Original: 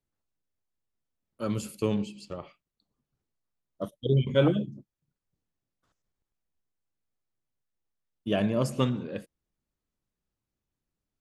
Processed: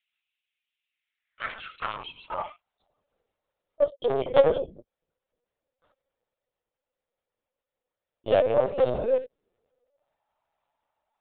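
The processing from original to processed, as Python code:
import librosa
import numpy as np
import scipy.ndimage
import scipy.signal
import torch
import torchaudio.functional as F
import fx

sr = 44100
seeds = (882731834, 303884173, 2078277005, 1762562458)

p1 = fx.rider(x, sr, range_db=4, speed_s=0.5)
p2 = x + F.gain(torch.from_numpy(p1), 1.0).numpy()
p3 = fx.filter_sweep_highpass(p2, sr, from_hz=110.0, to_hz=850.0, start_s=8.6, end_s=10.24, q=4.6)
p4 = 10.0 ** (-19.0 / 20.0) * np.tanh(p3 / 10.0 ** (-19.0 / 20.0))
p5 = fx.filter_sweep_highpass(p4, sr, from_hz=2600.0, to_hz=510.0, start_s=0.84, end_s=3.2, q=3.7)
y = fx.lpc_vocoder(p5, sr, seeds[0], excitation='pitch_kept', order=16)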